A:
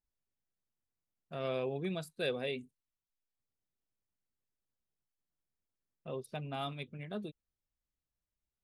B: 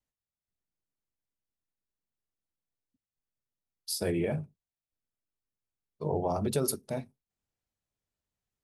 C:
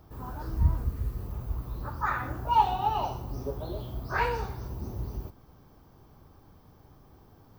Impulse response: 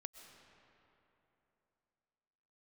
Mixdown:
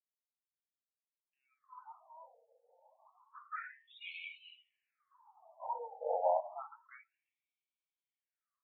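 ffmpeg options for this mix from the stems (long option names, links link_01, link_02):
-filter_complex "[0:a]highpass=frequency=1300:width=0.5412,highpass=frequency=1300:width=1.3066,volume=-16dB[link_01];[1:a]volume=0dB,asplit=2[link_02][link_03];[link_03]volume=-3.5dB[link_04];[2:a]acontrast=55,adelay=1500,volume=-15.5dB,asplit=2[link_05][link_06];[link_06]volume=-5dB[link_07];[3:a]atrim=start_sample=2205[link_08];[link_04][link_07]amix=inputs=2:normalize=0[link_09];[link_09][link_08]afir=irnorm=-1:irlink=0[link_10];[link_01][link_02][link_05][link_10]amix=inputs=4:normalize=0,afftdn=noise_reduction=16:noise_floor=-51,equalizer=frequency=125:width_type=o:width=0.33:gain=12,equalizer=frequency=400:width_type=o:width=0.33:gain=-10,equalizer=frequency=1600:width_type=o:width=0.33:gain=-8,equalizer=frequency=4000:width_type=o:width=0.33:gain=-5,afftfilt=real='re*between(b*sr/1024,630*pow(3100/630,0.5+0.5*sin(2*PI*0.29*pts/sr))/1.41,630*pow(3100/630,0.5+0.5*sin(2*PI*0.29*pts/sr))*1.41)':imag='im*between(b*sr/1024,630*pow(3100/630,0.5+0.5*sin(2*PI*0.29*pts/sr))/1.41,630*pow(3100/630,0.5+0.5*sin(2*PI*0.29*pts/sr))*1.41)':win_size=1024:overlap=0.75"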